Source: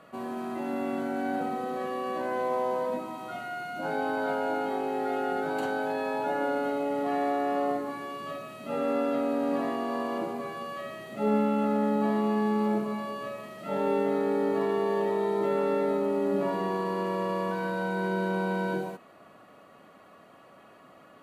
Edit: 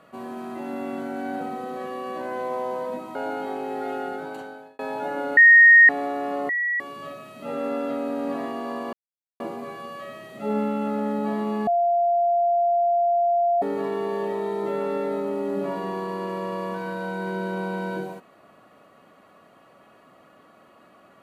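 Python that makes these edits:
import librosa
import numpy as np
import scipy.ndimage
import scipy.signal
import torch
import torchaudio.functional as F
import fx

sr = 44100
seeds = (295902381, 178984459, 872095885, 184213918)

y = fx.edit(x, sr, fx.cut(start_s=3.15, length_s=1.24),
    fx.fade_out_span(start_s=5.21, length_s=0.82),
    fx.bleep(start_s=6.61, length_s=0.52, hz=1860.0, db=-8.0),
    fx.bleep(start_s=7.73, length_s=0.31, hz=1930.0, db=-21.5),
    fx.insert_silence(at_s=10.17, length_s=0.47),
    fx.bleep(start_s=12.44, length_s=1.95, hz=693.0, db=-17.5), tone=tone)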